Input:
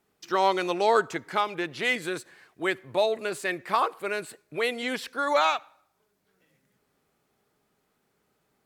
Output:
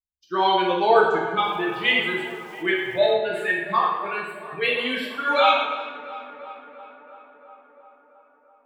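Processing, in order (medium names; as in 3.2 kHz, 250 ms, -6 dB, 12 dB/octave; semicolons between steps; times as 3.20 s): expander on every frequency bin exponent 2; resonant high shelf 4.3 kHz -10 dB, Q 3; tape echo 341 ms, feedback 77%, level -14.5 dB, low-pass 2.7 kHz; plate-style reverb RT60 1.1 s, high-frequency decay 0.8×, DRR -4 dB; 1.42–3.14 s: small samples zeroed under -49 dBFS; 4.78–5.41 s: tone controls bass -4 dB, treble +6 dB; trim +2.5 dB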